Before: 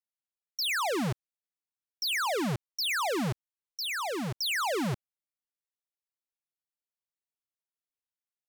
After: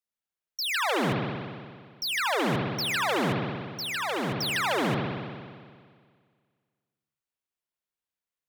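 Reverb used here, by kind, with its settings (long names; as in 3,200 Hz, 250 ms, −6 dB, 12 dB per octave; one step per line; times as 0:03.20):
spring reverb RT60 1.9 s, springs 58 ms, chirp 80 ms, DRR −1.5 dB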